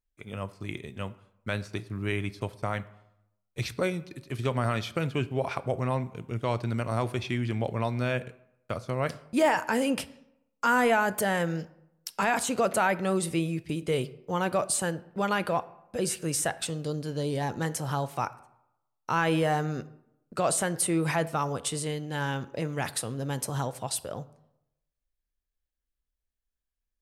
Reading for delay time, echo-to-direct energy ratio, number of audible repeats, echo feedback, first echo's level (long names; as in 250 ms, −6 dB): no echo audible